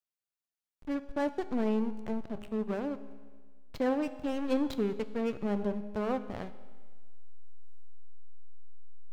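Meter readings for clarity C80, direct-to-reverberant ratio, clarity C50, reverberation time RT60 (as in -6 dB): 14.0 dB, 11.0 dB, 13.0 dB, 1.5 s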